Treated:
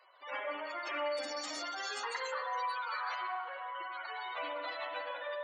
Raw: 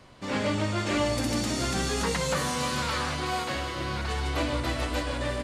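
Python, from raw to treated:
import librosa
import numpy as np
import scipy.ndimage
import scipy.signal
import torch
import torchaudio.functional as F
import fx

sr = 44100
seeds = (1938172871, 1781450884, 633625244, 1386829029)

p1 = scipy.signal.sosfilt(scipy.signal.butter(2, 750.0, 'highpass', fs=sr, output='sos'), x)
p2 = fx.spec_gate(p1, sr, threshold_db=-10, keep='strong')
p3 = fx.lowpass(p2, sr, hz=1500.0, slope=12, at=(3.35, 3.75))
p4 = 10.0 ** (-27.0 / 20.0) * np.tanh(p3 / 10.0 ** (-27.0 / 20.0))
p5 = p3 + (p4 * librosa.db_to_amplitude(-11.5))
p6 = fx.rev_spring(p5, sr, rt60_s=1.3, pass_ms=(44, 51), chirp_ms=70, drr_db=3.5)
y = p6 * librosa.db_to_amplitude(-6.5)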